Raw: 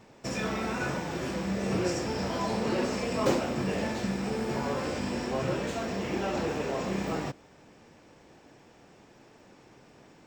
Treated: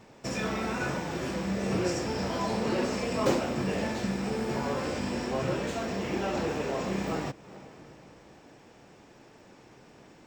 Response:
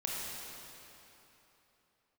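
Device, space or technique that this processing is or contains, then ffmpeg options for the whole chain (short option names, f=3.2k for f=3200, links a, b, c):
ducked reverb: -filter_complex "[0:a]asplit=3[a][b][c];[1:a]atrim=start_sample=2205[d];[b][d]afir=irnorm=-1:irlink=0[e];[c]apad=whole_len=452586[f];[e][f]sidechaincompress=threshold=-46dB:ratio=8:attack=16:release=221,volume=-14.5dB[g];[a][g]amix=inputs=2:normalize=0"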